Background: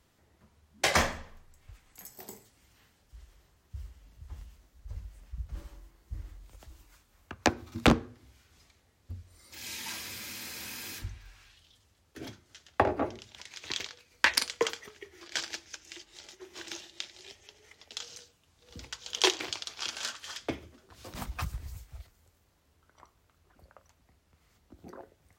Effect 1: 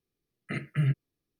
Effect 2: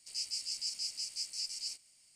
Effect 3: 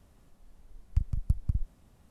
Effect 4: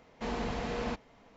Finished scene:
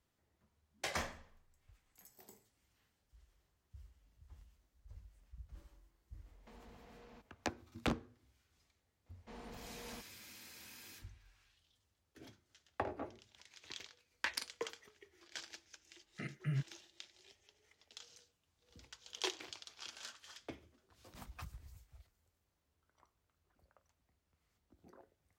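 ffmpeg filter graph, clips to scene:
-filter_complex "[4:a]asplit=2[s0][s1];[0:a]volume=0.2[s2];[s0]acompressor=threshold=0.00891:ratio=6:attack=3.2:release=140:knee=1:detection=peak,atrim=end=1.36,asetpts=PTS-STARTPTS,volume=0.188,afade=t=in:d=0.004:c=hsin,afade=t=out:st=1.356:d=0.004:c=hsin,adelay=276066S[s3];[s1]atrim=end=1.36,asetpts=PTS-STARTPTS,volume=0.141,afade=t=in:d=0.004:c=hsin,afade=t=out:st=1.356:d=0.004:c=hsin,adelay=399546S[s4];[1:a]atrim=end=1.39,asetpts=PTS-STARTPTS,volume=0.282,afade=t=in:d=0.004:c=hsin,afade=t=out:st=1.386:d=0.004:c=hsin,adelay=15690[s5];[s2][s3][s4][s5]amix=inputs=4:normalize=0"

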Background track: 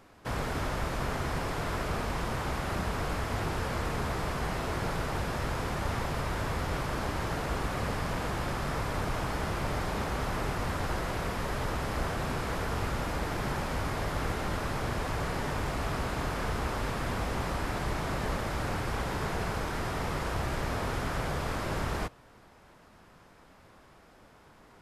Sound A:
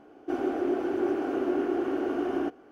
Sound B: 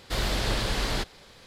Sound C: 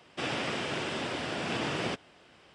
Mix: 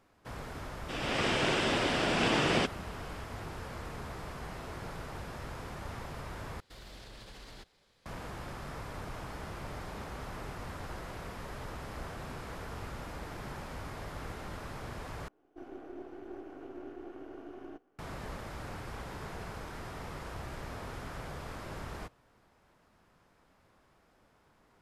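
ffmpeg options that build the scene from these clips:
-filter_complex "[0:a]volume=0.316[s0];[3:a]dynaudnorm=f=280:g=3:m=4.22[s1];[2:a]alimiter=limit=0.0708:level=0:latency=1:release=60[s2];[1:a]aeval=exprs='if(lt(val(0),0),0.447*val(0),val(0))':c=same[s3];[s0]asplit=3[s4][s5][s6];[s4]atrim=end=6.604[s7];[s2]atrim=end=1.46,asetpts=PTS-STARTPTS,volume=0.133[s8];[s5]atrim=start=8.056:end=15.284[s9];[s3]atrim=end=2.71,asetpts=PTS-STARTPTS,volume=0.168[s10];[s6]atrim=start=17.986[s11];[s1]atrim=end=2.54,asetpts=PTS-STARTPTS,volume=0.398,afade=t=in:d=0.004:c=hsin,afade=t=out:st=2.536:d=0.004:c=hsin,adelay=710[s12];[s7][s8]acrossfade=d=0.004:c1=hsin:c2=hsin[s13];[s13][s9]acrossfade=d=0.004:c1=hsin:c2=hsin[s14];[s14][s10]acrossfade=d=0.004:c1=hsin:c2=hsin[s15];[s15][s11]acrossfade=d=0.004:c1=hsin:c2=hsin[s16];[s16][s12]amix=inputs=2:normalize=0"

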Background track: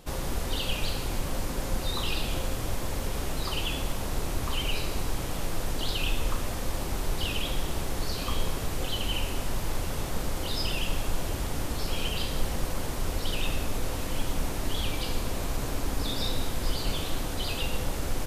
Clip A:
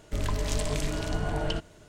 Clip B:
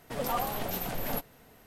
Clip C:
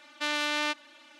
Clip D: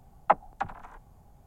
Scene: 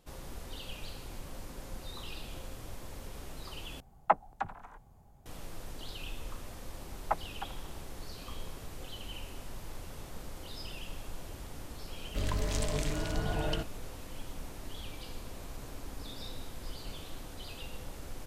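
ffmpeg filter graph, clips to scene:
-filter_complex "[4:a]asplit=2[s0][s1];[0:a]volume=0.211,asplit=2[s2][s3];[s2]atrim=end=3.804[s4];[s0]atrim=end=1.46,asetpts=PTS-STARTPTS,volume=0.668[s5];[s3]atrim=start=5.256[s6];[s1]atrim=end=1.46,asetpts=PTS-STARTPTS,volume=0.316,afade=t=in:d=0.004:c=hsin,afade=t=out:st=1.456:d=0.004:c=hsin,adelay=6810[s7];[1:a]atrim=end=1.88,asetpts=PTS-STARTPTS,volume=0.668,afade=t=in:d=0.004:c=hsin,afade=t=out:st=1.876:d=0.004:c=hsin,adelay=12030[s8];[s4][s5]acrossfade=d=0.004:c1=hsin:c2=hsin[s9];[s9][s6]acrossfade=d=0.004:c1=hsin:c2=hsin[s10];[s10][s7][s8]amix=inputs=3:normalize=0"

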